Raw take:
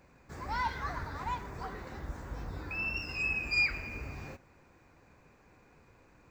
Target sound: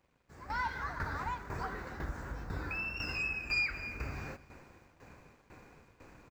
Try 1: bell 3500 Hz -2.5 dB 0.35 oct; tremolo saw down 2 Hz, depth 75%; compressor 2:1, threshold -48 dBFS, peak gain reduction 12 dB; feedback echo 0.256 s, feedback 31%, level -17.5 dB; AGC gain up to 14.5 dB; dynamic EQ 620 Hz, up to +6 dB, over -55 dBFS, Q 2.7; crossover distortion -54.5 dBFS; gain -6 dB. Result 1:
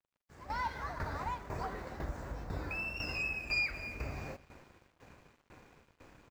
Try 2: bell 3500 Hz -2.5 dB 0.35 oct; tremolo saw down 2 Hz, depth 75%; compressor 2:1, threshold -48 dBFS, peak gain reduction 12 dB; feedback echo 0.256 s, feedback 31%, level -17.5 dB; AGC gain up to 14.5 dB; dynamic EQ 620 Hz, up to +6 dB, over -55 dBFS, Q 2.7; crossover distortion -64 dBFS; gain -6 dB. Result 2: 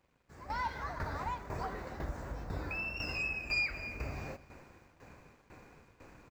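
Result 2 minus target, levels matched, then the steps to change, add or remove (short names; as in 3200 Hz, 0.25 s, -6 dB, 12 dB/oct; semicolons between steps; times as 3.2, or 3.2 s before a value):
500 Hz band +3.5 dB
change: dynamic EQ 1500 Hz, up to +6 dB, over -55 dBFS, Q 2.7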